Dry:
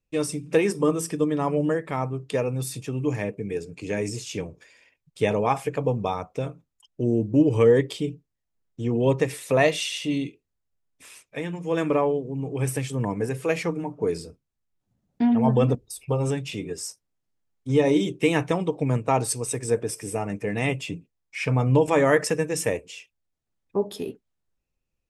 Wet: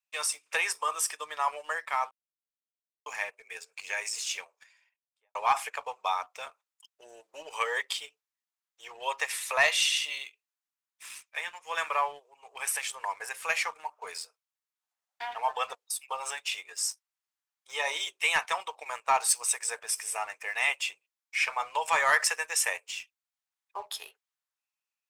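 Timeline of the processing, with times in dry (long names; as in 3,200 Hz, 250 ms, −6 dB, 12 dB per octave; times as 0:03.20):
0:02.11–0:03.06: silence
0:04.35–0:05.35: fade out and dull
whole clip: inverse Chebyshev high-pass filter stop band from 260 Hz, stop band 60 dB; leveller curve on the samples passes 1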